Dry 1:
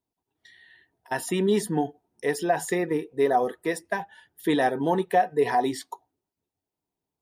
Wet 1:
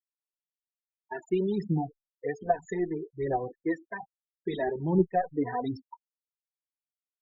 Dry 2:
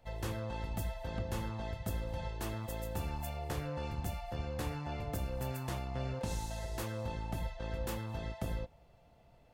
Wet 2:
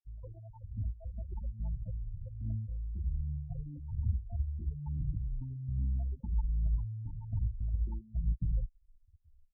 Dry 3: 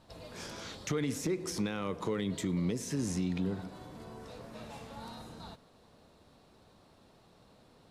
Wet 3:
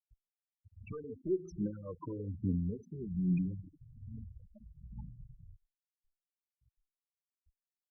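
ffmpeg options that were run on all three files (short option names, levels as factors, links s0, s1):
-filter_complex "[0:a]adynamicequalizer=threshold=0.0158:dfrequency=430:dqfactor=1.1:tfrequency=430:tqfactor=1.1:attack=5:release=100:ratio=0.375:range=3:mode=boostabove:tftype=bell,aphaser=in_gain=1:out_gain=1:delay=3.4:decay=0.55:speed=1.2:type=triangular,aresample=16000,aresample=44100,asubboost=boost=5:cutoff=210,afftfilt=real='re*gte(hypot(re,im),0.0631)':imag='im*gte(hypot(re,im),0.0631)':win_size=1024:overlap=0.75,asplit=2[s0][s1];[s1]adelay=3.2,afreqshift=-0.6[s2];[s0][s2]amix=inputs=2:normalize=1,volume=0.447"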